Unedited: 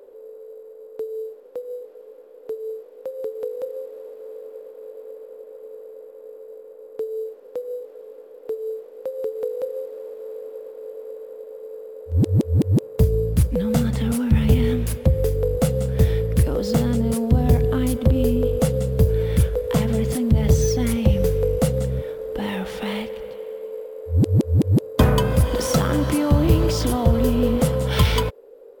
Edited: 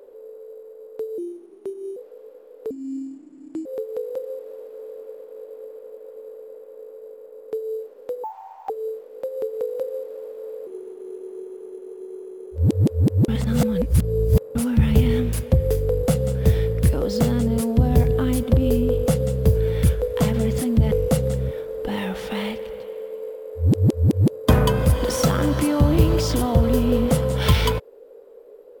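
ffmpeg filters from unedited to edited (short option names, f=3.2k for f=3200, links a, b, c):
-filter_complex "[0:a]asplit=12[a][b][c][d][e][f][g][h][i][j][k][l];[a]atrim=end=1.184[m];[b]atrim=start=1.18:end=1.8,asetpts=PTS-STARTPTS,asetrate=34839,aresample=44100,atrim=end_sample=34610,asetpts=PTS-STARTPTS[n];[c]atrim=start=1.796:end=2.544[o];[d]atrim=start=2.54:end=3.12,asetpts=PTS-STARTPTS,asetrate=26901,aresample=44100,atrim=end_sample=41931,asetpts=PTS-STARTPTS[p];[e]atrim=start=3.116:end=7.704[q];[f]atrim=start=7.7:end=8.52,asetpts=PTS-STARTPTS,asetrate=78057,aresample=44100[r];[g]atrim=start=8.516:end=10.494[s];[h]atrim=start=10.49:end=12.1,asetpts=PTS-STARTPTS,asetrate=37485,aresample=44100[t];[i]atrim=start=12.096:end=12.822[u];[j]atrim=start=12.818:end=14.092,asetpts=PTS-STARTPTS,areverse[v];[k]atrim=start=14.088:end=20.452[w];[l]atrim=start=21.418[x];[m][n]acrossfade=d=0.004:c1=hsin:c2=hsin[y];[y][o]acrossfade=d=0.004:c1=hsin:c2=hsin[z];[z][p]acrossfade=d=0.004:c1=hsin:c2=hsin[aa];[aa][q]acrossfade=d=0.004:c1=hsin:c2=hsin[ab];[ab][r]acrossfade=d=0.004:c1=hsin:c2=hsin[ac];[ac][s]acrossfade=d=0.004:c1=hsin:c2=hsin[ad];[ad][t]acrossfade=d=0.004:c1=hsin:c2=hsin[ae];[ae][u]acrossfade=d=0.004:c1=hsin:c2=hsin[af];[af][v]acrossfade=d=0.004:c1=hsin:c2=hsin[ag];[ag][w]acrossfade=d=0.004:c1=hsin:c2=hsin[ah];[ah][x]acrossfade=d=0.004:c1=hsin:c2=hsin"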